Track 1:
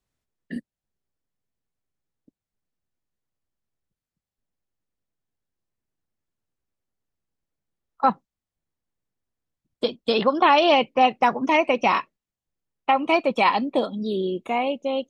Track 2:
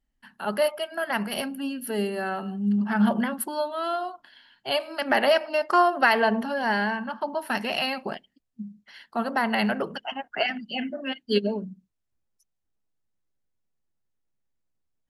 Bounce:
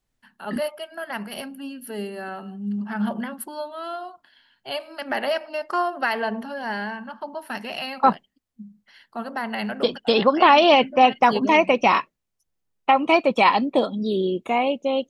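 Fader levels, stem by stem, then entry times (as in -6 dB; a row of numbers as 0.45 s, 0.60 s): +2.5 dB, -4.0 dB; 0.00 s, 0.00 s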